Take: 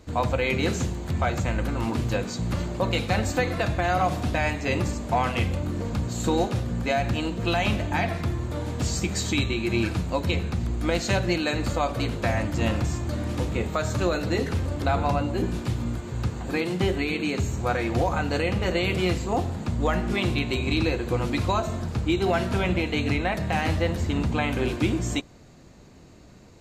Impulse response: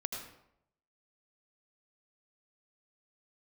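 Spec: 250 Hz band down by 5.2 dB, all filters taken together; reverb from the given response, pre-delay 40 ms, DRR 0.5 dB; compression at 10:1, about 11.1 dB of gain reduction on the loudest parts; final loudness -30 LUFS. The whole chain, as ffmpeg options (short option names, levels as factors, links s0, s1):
-filter_complex "[0:a]equalizer=f=250:t=o:g=-7.5,acompressor=threshold=0.0251:ratio=10,asplit=2[s0][s1];[1:a]atrim=start_sample=2205,adelay=40[s2];[s1][s2]afir=irnorm=-1:irlink=0,volume=0.794[s3];[s0][s3]amix=inputs=2:normalize=0,volume=1.58"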